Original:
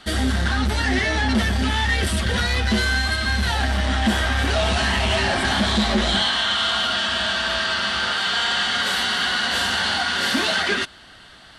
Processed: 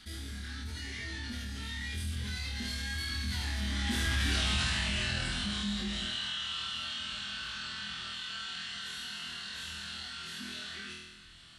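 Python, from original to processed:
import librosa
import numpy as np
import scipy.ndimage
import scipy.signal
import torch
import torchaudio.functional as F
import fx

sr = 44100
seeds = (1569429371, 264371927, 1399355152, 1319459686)

y = fx.doppler_pass(x, sr, speed_mps=15, closest_m=4.1, pass_at_s=4.32)
y = fx.tone_stack(y, sr, knobs='6-0-2')
y = fx.room_flutter(y, sr, wall_m=4.2, rt60_s=0.65)
y = fx.env_flatten(y, sr, amount_pct=50)
y = F.gain(torch.from_numpy(y), 7.0).numpy()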